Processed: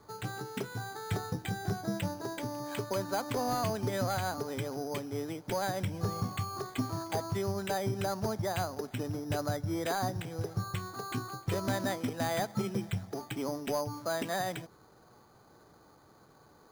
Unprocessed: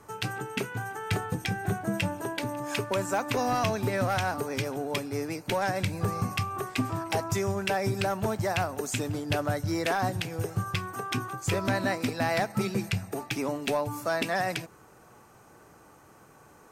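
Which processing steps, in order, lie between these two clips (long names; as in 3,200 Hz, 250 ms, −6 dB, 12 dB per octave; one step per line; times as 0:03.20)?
low-pass filter 2,000 Hz 6 dB per octave
bad sample-rate conversion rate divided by 8×, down filtered, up hold
level −4 dB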